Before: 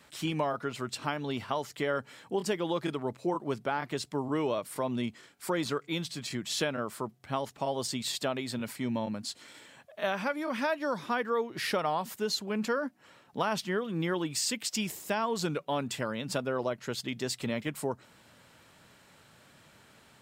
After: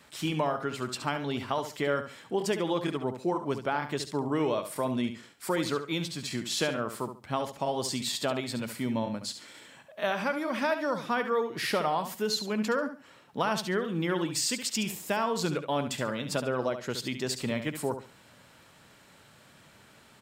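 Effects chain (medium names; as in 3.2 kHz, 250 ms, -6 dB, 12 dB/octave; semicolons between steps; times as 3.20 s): feedback delay 70 ms, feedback 24%, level -9.5 dB; trim +1.5 dB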